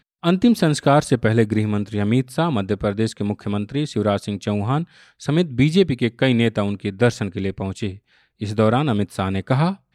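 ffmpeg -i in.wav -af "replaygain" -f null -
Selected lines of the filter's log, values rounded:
track_gain = +0.2 dB
track_peak = 0.405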